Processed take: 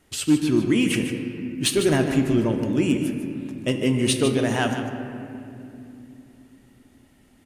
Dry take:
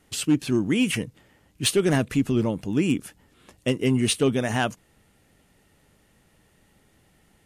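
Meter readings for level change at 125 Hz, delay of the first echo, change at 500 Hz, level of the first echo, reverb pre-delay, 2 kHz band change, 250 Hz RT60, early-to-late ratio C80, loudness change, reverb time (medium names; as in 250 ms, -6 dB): +1.0 dB, 150 ms, +2.0 dB, -10.0 dB, 3 ms, +1.5 dB, 5.1 s, 5.5 dB, +1.5 dB, 2.9 s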